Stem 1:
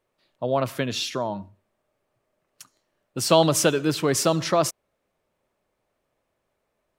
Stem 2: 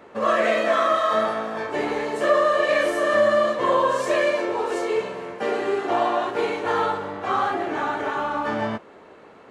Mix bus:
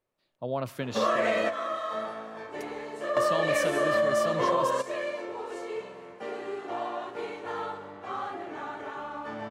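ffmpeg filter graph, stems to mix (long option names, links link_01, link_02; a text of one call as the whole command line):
ffmpeg -i stem1.wav -i stem2.wav -filter_complex "[0:a]lowshelf=frequency=480:gain=2,volume=-8.5dB,asplit=2[link_01][link_02];[1:a]bandreject=frequency=1600:width=28,adelay=800,volume=1dB[link_03];[link_02]apad=whole_len=454310[link_04];[link_03][link_04]sidechaingate=range=-13dB:threshold=-48dB:ratio=16:detection=peak[link_05];[link_01][link_05]amix=inputs=2:normalize=0,acompressor=threshold=-23dB:ratio=4" out.wav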